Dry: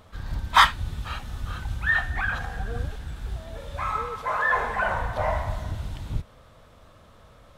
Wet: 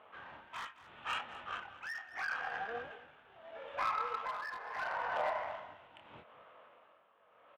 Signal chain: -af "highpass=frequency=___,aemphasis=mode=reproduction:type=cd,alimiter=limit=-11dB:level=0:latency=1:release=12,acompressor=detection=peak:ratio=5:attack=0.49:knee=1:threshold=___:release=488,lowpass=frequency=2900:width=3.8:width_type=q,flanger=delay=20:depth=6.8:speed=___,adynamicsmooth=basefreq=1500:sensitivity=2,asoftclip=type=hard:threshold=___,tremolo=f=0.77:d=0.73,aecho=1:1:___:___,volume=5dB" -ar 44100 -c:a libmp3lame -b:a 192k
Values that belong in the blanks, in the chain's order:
670, -29dB, 1.4, -32dB, 218, 0.15